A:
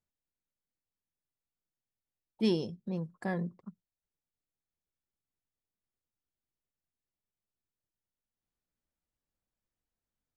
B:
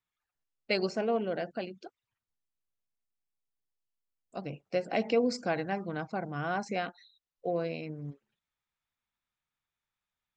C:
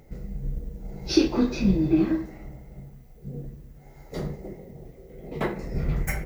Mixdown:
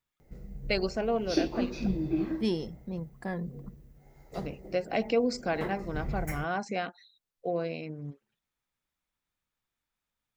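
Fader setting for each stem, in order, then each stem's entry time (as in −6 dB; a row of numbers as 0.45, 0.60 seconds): −1.0, +0.5, −8.5 decibels; 0.00, 0.00, 0.20 seconds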